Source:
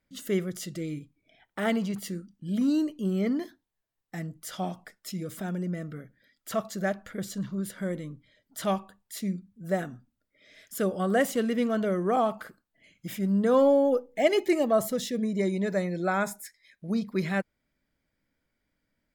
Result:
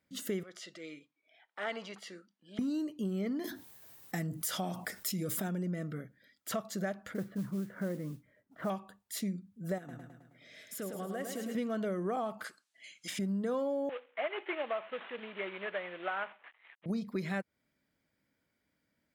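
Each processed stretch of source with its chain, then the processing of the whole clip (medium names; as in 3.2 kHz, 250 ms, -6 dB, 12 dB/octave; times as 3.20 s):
0.43–2.59 s: band-pass 640–4400 Hz + transient shaper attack -7 dB, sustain 0 dB
3.44–5.48 s: treble shelf 9.1 kHz +11 dB + level flattener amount 50%
7.14–8.70 s: low-pass 1.8 kHz 24 dB/octave + modulation noise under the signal 24 dB
9.78–11.55 s: compression 3:1, threshold -41 dBFS + feedback delay 106 ms, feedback 55%, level -6 dB
12.44–13.19 s: frequency weighting ITU-R 468 + de-esser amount 80%
13.89–16.86 s: CVSD coder 16 kbps + high-pass 770 Hz
whole clip: high-pass 91 Hz; compression 6:1, threshold -32 dBFS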